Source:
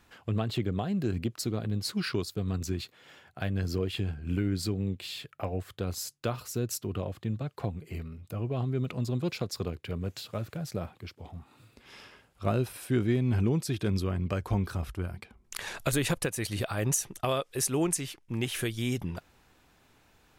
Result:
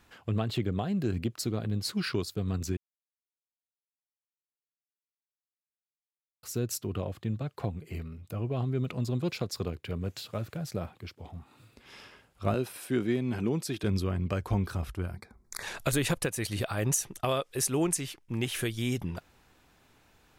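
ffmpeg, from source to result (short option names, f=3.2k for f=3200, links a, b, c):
-filter_complex "[0:a]asettb=1/sr,asplit=3[a][b][c];[a]atrim=end=12.544[d];[b]atrim=start=12.54:end=13.84,asetpts=PTS-STARTPTS,afade=t=in:d=0.004:c=qsin,afade=t=out:st=1.296:d=0.004:c=qsin,highpass=180[e];[c]atrim=start=13.836[f];[d][e]acrossfade=d=0.004:c1=hsin:c2=qsin[g];[g][f]acrossfade=d=0.004:c1=qsin:c2=hsin,asettb=1/sr,asplit=3[h][i][j];[h]atrim=end=15.154[k];[i]atrim=start=15.15:end=15.63,asetpts=PTS-STARTPTS,afade=t=in:d=0.004:c=qsin,afade=t=out:st=0.476:d=0.004:c=qsin,asuperstop=centerf=2900:order=4:qfactor=1.7[l];[j]atrim=start=15.626[m];[k][l]acrossfade=d=0.004:c1=hsin:c2=qsin[n];[n][m]acrossfade=d=0.004:c1=qsin:c2=hsin,asplit=3[o][p][q];[o]atrim=end=2.77,asetpts=PTS-STARTPTS,afade=t=out:st=2.766:d=0.004:c=hsin[r];[p]atrim=start=2.77:end=6.43,asetpts=PTS-STARTPTS,volume=0[s];[q]atrim=start=6.43,asetpts=PTS-STARTPTS,afade=t=in:d=0.004:c=hsin[t];[r][s][t]concat=n=3:v=0:a=1"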